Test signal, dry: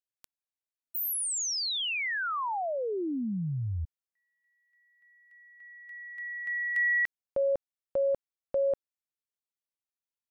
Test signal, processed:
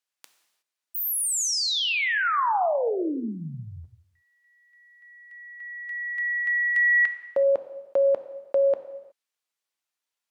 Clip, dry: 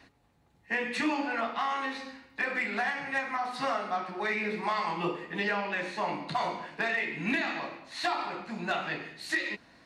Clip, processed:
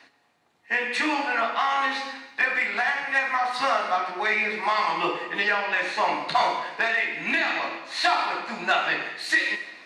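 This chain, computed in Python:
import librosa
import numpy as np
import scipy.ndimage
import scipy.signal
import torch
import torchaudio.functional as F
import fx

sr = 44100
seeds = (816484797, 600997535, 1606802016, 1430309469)

y = fx.weighting(x, sr, curve='A')
y = fx.rider(y, sr, range_db=3, speed_s=0.5)
y = fx.rev_gated(y, sr, seeds[0], gate_ms=390, shape='falling', drr_db=8.5)
y = y * 10.0 ** (7.0 / 20.0)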